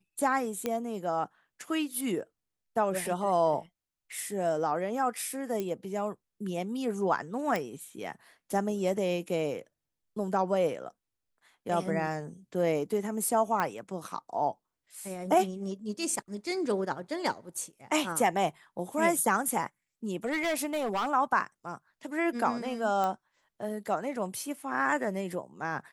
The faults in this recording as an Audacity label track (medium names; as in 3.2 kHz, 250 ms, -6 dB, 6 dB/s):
0.660000	0.660000	pop -16 dBFS
5.600000	5.600000	pop -20 dBFS
7.560000	7.560000	pop
13.600000	13.600000	pop -16 dBFS
20.250000	21.100000	clipped -26 dBFS
23.040000	23.040000	pop -19 dBFS